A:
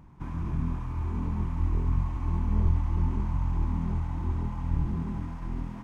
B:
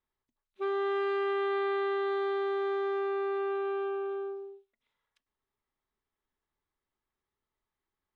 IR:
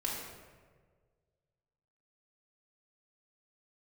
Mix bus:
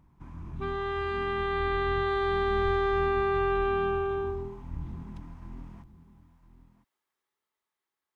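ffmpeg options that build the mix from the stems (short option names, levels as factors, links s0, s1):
-filter_complex "[0:a]volume=0.299,asplit=3[s0][s1][s2];[s1]volume=0.15[s3];[s2]volume=0.211[s4];[1:a]highpass=f=630:p=1,dynaudnorm=f=370:g=11:m=2.51,volume=1.19[s5];[2:a]atrim=start_sample=2205[s6];[s3][s6]afir=irnorm=-1:irlink=0[s7];[s4]aecho=0:1:1007:1[s8];[s0][s5][s7][s8]amix=inputs=4:normalize=0"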